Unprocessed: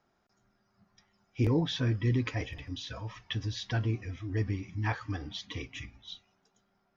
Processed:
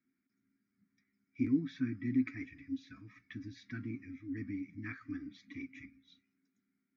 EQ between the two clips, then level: dynamic bell 1.3 kHz, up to +8 dB, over -58 dBFS, Q 2.5; vowel filter i; static phaser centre 1.3 kHz, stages 4; +8.0 dB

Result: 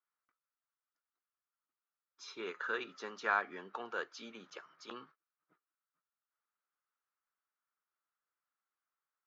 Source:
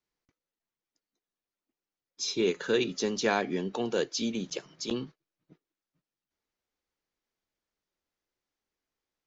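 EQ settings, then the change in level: band-pass filter 1.3 kHz, Q 4.2; +5.5 dB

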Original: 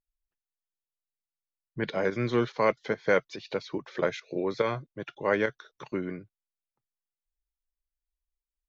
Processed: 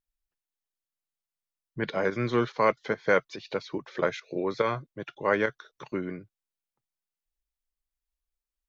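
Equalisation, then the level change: dynamic bell 1.2 kHz, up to +4 dB, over -42 dBFS, Q 1.8; 0.0 dB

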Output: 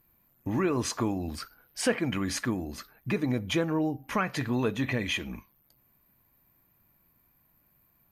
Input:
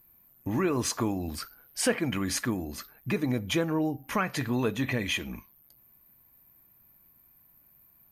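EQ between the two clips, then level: treble shelf 10 kHz -11 dB; 0.0 dB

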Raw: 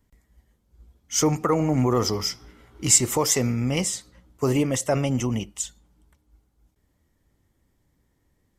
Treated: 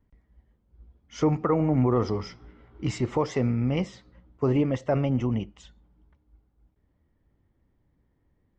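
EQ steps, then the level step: distance through air 190 m; tape spacing loss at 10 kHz 27 dB; treble shelf 5.6 kHz +11.5 dB; 0.0 dB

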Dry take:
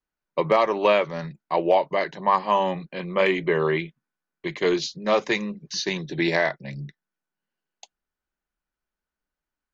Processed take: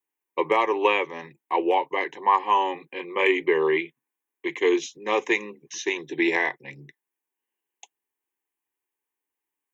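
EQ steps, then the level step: high-pass 180 Hz 12 dB/octave; treble shelf 5.7 kHz +8 dB; static phaser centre 930 Hz, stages 8; +2.0 dB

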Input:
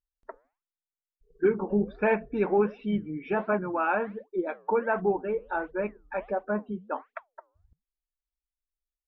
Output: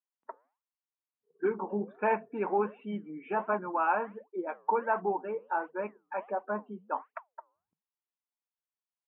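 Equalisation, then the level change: high-pass 190 Hz 24 dB/octave; elliptic low-pass 3 kHz, stop band 50 dB; peaking EQ 960 Hz +9.5 dB 0.73 oct; -6.0 dB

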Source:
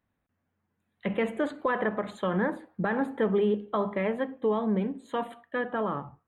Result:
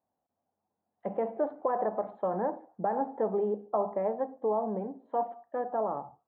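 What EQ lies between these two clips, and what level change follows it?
high-pass 330 Hz 6 dB/octave; resonant low-pass 760 Hz, resonance Q 3.7; -4.5 dB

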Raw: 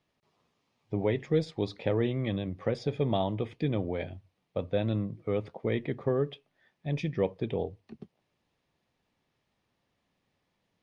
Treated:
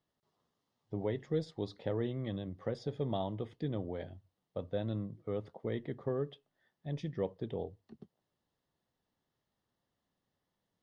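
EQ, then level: peaking EQ 2.4 kHz -15 dB 0.24 oct; -7.0 dB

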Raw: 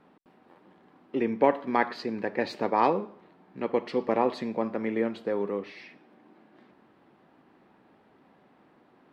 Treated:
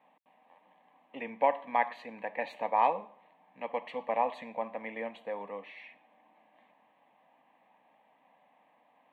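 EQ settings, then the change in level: high-pass 390 Hz 12 dB/octave; treble shelf 5.4 kHz -7 dB; static phaser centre 1.4 kHz, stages 6; 0.0 dB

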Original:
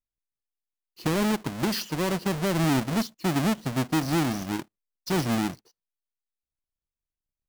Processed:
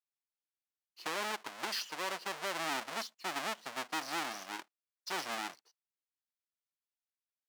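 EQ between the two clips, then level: high-pass 810 Hz 12 dB/octave; treble shelf 9.6 kHz -10.5 dB; -4.0 dB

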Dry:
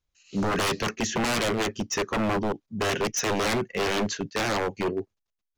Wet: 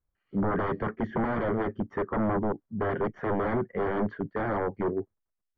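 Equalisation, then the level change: Savitzky-Golay filter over 41 samples; distance through air 490 m; 0.0 dB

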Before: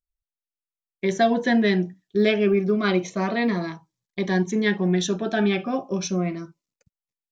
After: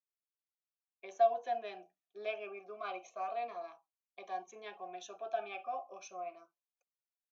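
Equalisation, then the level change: vowel filter a; high-pass 510 Hz 12 dB/octave; peaking EQ 6.4 kHz +13.5 dB 0.25 oct; -3.5 dB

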